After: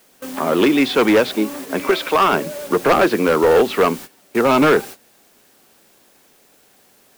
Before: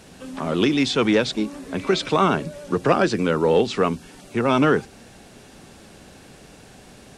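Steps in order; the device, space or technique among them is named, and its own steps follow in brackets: 1.91–2.33 HPF 530 Hz 6 dB/oct; aircraft radio (BPF 300–2500 Hz; hard clip -17.5 dBFS, distortion -11 dB; white noise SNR 19 dB; gate -39 dBFS, range -18 dB); gain +8.5 dB

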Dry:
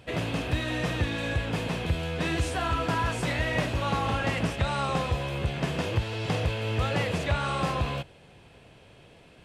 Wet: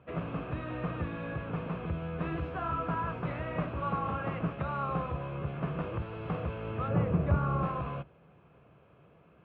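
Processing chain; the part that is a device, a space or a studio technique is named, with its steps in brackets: 6.88–7.63 tilt -3 dB/oct; sub-octave bass pedal (octaver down 2 oct, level -1 dB; speaker cabinet 71–2200 Hz, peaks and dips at 100 Hz -7 dB, 160 Hz +5 dB, 250 Hz -3 dB, 850 Hz -3 dB, 1200 Hz +8 dB, 1900 Hz -9 dB); gain -6 dB

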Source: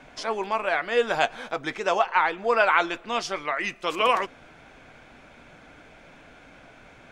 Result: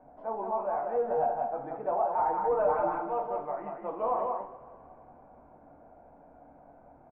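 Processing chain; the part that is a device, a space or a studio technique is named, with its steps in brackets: 2.18–3.21 comb 6.6 ms, depth 100%; echo 0.183 s -4.5 dB; two-slope reverb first 0.39 s, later 3.1 s, from -21 dB, DRR 1.5 dB; overdriven synthesiser ladder filter (soft clip -14 dBFS, distortion -11 dB; ladder low-pass 920 Hz, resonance 50%); gain -1 dB

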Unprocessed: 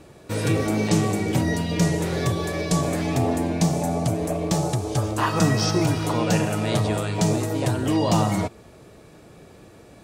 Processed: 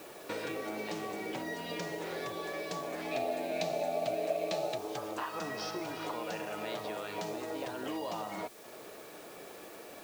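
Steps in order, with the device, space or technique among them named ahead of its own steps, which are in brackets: baby monitor (BPF 410–4200 Hz; compressor 6:1, threshold -39 dBFS, peak gain reduction 19 dB; white noise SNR 17 dB); 3.11–4.78 thirty-one-band EQ 630 Hz +11 dB, 1000 Hz -8 dB, 2500 Hz +9 dB, 4000 Hz +8 dB; gain +2.5 dB

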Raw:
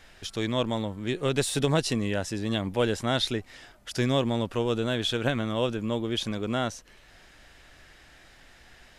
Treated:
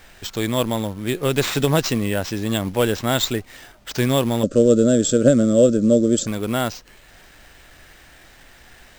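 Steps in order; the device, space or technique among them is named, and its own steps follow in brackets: early companding sampler (sample-rate reducer 11000 Hz, jitter 0%; companded quantiser 6-bit); 4.43–6.27 EQ curve 110 Hz 0 dB, 170 Hz +7 dB, 270 Hz +10 dB, 390 Hz +4 dB, 590 Hz +11 dB, 860 Hz -29 dB, 1300 Hz -3 dB, 2300 Hz -15 dB, 7500 Hz +8 dB, 11000 Hz -25 dB; gain +6 dB

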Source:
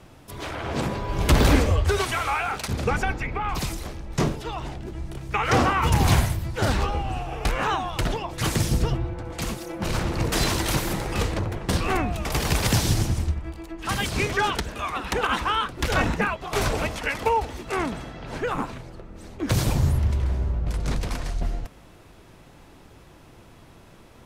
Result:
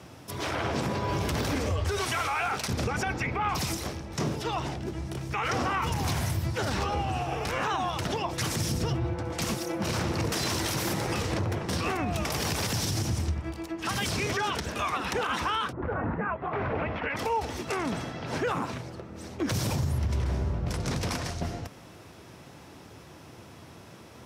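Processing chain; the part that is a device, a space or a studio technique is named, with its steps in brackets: broadcast voice chain (HPF 76 Hz 24 dB/oct; de-esser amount 35%; compressor, threshold -23 dBFS, peak gain reduction 9 dB; bell 5500 Hz +6 dB 0.29 oct; limiter -22 dBFS, peak gain reduction 9.5 dB); 15.71–17.16 LPF 1300 Hz -> 2800 Hz 24 dB/oct; gain +2 dB

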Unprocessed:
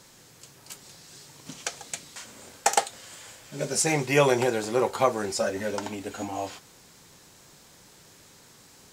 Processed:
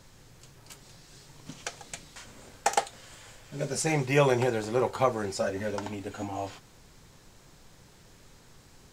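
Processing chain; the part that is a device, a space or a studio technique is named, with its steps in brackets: car interior (bell 110 Hz +7 dB 0.86 oct; high shelf 5000 Hz -6.5 dB; brown noise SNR 25 dB); gain -2.5 dB

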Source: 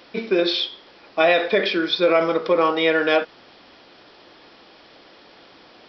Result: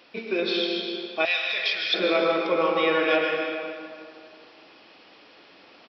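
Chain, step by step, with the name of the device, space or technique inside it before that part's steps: PA in a hall (HPF 150 Hz 6 dB/oct; bell 2600 Hz +7 dB 0.27 oct; echo 0.155 s -8 dB; reverb RT60 2.3 s, pre-delay 0.107 s, DRR 0.5 dB); 1.25–1.94 EQ curve 110 Hz 0 dB, 230 Hz -26 dB, 4900 Hz +8 dB; gain -7 dB

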